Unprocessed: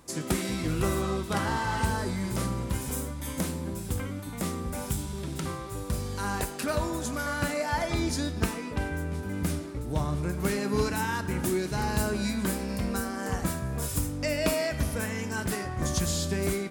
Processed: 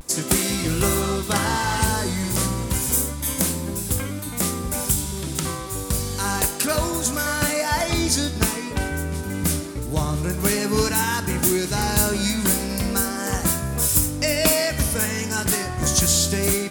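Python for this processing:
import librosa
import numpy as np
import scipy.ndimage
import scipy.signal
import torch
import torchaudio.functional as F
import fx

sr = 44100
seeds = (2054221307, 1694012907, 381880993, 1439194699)

y = fx.high_shelf(x, sr, hz=4200.0, db=11.5)
y = fx.vibrato(y, sr, rate_hz=0.31, depth_cents=31.0)
y = y * 10.0 ** (5.5 / 20.0)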